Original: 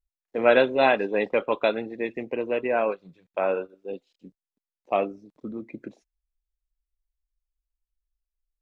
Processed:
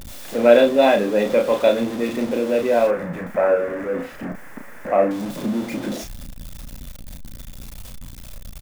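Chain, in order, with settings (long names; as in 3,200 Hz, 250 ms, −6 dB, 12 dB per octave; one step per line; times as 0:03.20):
converter with a step at zero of −26.5 dBFS
0:02.87–0:05.11: high shelf with overshoot 2,600 Hz −12.5 dB, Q 3
double-tracking delay 34 ms −5 dB
hollow resonant body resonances 230/550/3,500 Hz, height 9 dB, ringing for 25 ms
level −2.5 dB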